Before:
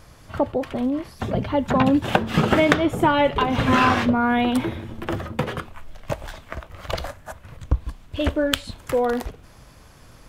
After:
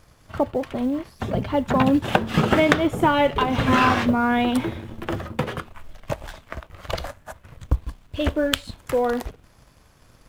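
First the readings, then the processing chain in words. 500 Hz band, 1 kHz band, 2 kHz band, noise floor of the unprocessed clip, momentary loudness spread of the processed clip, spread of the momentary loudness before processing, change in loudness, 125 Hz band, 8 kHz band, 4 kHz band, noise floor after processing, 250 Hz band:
-0.5 dB, -0.5 dB, -0.5 dB, -48 dBFS, 17 LU, 18 LU, -0.5 dB, -0.5 dB, 0.0 dB, -0.5 dB, -55 dBFS, -0.5 dB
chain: companding laws mixed up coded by A

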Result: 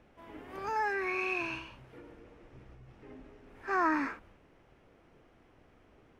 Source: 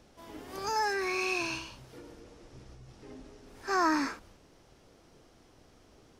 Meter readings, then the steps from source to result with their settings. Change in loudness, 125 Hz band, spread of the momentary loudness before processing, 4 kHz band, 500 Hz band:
-2.0 dB, -2.5 dB, 22 LU, -11.5 dB, -2.5 dB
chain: resonant high shelf 3.4 kHz -12 dB, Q 1.5; trim -2.5 dB

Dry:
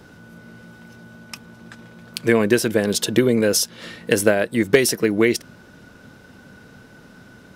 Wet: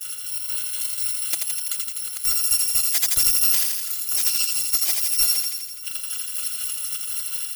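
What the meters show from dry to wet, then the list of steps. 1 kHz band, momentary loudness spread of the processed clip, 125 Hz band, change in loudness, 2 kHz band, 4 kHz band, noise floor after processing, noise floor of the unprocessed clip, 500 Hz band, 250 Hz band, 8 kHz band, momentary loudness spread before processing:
-9.5 dB, 10 LU, under -20 dB, -1.0 dB, -10.5 dB, +3.5 dB, -33 dBFS, -47 dBFS, under -30 dB, under -30 dB, +7.0 dB, 18 LU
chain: bit-reversed sample order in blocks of 256 samples; high-pass 110 Hz 12 dB/octave; reverb removal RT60 0.87 s; in parallel at +0.5 dB: peak limiter -13.5 dBFS, peak gain reduction 11.5 dB; on the sum: tilt shelf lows -9 dB, about 1.3 kHz; compression 2.5:1, threshold -23 dBFS, peak gain reduction 16.5 dB; gate -36 dBFS, range -29 dB; level rider gain up to 5 dB; square tremolo 4.1 Hz, depth 60%, duty 55%; hard clipper -15.5 dBFS, distortion -10 dB; on a send: thinning echo 83 ms, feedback 69%, high-pass 590 Hz, level -3 dB

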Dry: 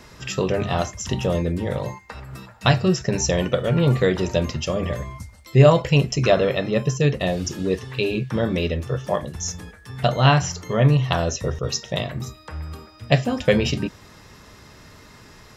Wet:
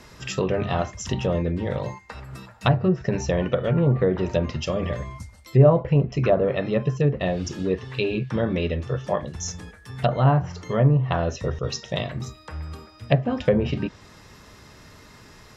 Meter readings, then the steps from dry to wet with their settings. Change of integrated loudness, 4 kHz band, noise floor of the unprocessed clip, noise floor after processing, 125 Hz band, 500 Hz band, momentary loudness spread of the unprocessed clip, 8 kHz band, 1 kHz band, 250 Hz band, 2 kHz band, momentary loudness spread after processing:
-2.0 dB, -7.5 dB, -47 dBFS, -49 dBFS, -1.5 dB, -1.5 dB, 16 LU, no reading, -3.0 dB, -1.5 dB, -6.0 dB, 15 LU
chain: low-pass that closes with the level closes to 910 Hz, closed at -13.5 dBFS; trim -1.5 dB

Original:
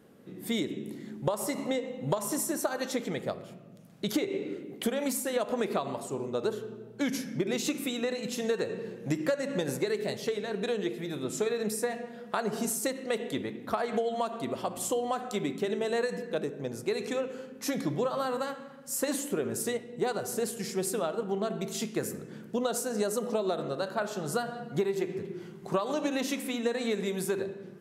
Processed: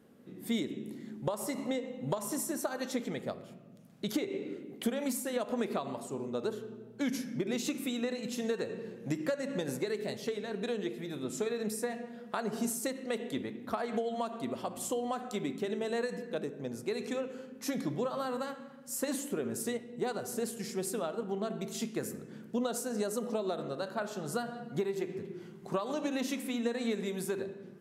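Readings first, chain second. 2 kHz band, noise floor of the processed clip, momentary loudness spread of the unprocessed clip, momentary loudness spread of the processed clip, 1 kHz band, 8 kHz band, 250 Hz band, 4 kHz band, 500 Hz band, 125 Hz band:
-4.5 dB, -51 dBFS, 6 LU, 6 LU, -4.5 dB, -4.5 dB, -2.0 dB, -4.5 dB, -4.5 dB, -4.0 dB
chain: peaking EQ 240 Hz +5.5 dB 0.27 oct; trim -4.5 dB

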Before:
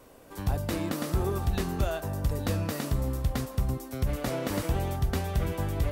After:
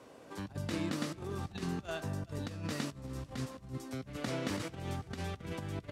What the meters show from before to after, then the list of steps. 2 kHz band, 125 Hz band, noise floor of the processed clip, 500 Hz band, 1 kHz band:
-4.5 dB, -10.5 dB, -55 dBFS, -9.0 dB, -8.5 dB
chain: dynamic bell 650 Hz, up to -7 dB, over -46 dBFS, Q 0.72; compressor with a negative ratio -32 dBFS, ratio -0.5; band-pass 120–6900 Hz; delay 389 ms -21 dB; trim -3.5 dB

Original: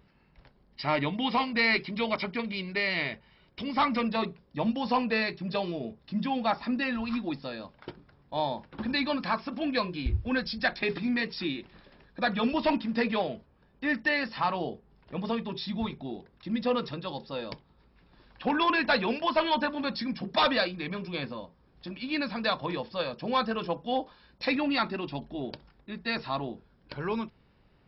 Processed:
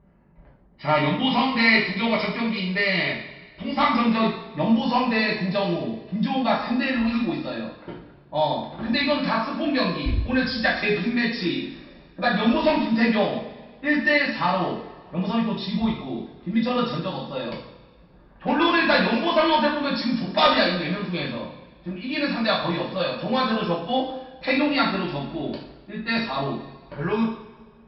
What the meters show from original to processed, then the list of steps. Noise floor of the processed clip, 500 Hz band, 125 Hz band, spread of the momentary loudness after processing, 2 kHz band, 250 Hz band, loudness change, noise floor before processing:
-51 dBFS, +7.0 dB, +8.5 dB, 13 LU, +7.0 dB, +8.0 dB, +7.0 dB, -64 dBFS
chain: level-controlled noise filter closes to 1.1 kHz, open at -26.5 dBFS; two-slope reverb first 0.58 s, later 1.8 s, from -16 dB, DRR -5.5 dB

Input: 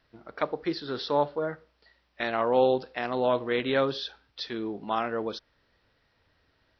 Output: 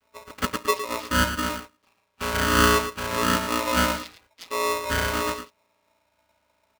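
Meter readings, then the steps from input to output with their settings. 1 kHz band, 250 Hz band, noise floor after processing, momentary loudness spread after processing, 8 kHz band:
+5.5 dB, +4.0 dB, -71 dBFS, 13 LU, no reading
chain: vocoder on a held chord bare fifth, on A#2; in parallel at -11.5 dB: word length cut 6-bit, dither none; on the sum: speakerphone echo 110 ms, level -7 dB; polarity switched at an audio rate 770 Hz; trim +2 dB

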